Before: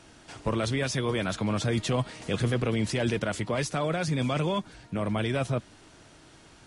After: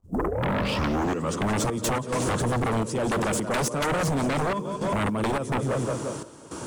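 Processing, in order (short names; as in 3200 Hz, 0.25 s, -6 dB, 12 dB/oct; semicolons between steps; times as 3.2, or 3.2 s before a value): tape start at the beginning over 1.48 s; bell 740 Hz -9 dB 0.51 oct; split-band echo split 400 Hz, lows 0.13 s, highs 0.176 s, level -11 dB; in parallel at -9 dB: hard clip -30.5 dBFS, distortion -7 dB; on the sum: HPF 96 Hz 12 dB/oct; companded quantiser 8-bit; step gate ".x.xxxxx..xx" 106 bpm -12 dB; compressor 6:1, threshold -33 dBFS, peak gain reduction 11.5 dB; graphic EQ 250/500/1000/2000/4000/8000 Hz +3/+6/+8/-10/-7/+6 dB; sine folder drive 15 dB, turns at -16.5 dBFS; gain -5 dB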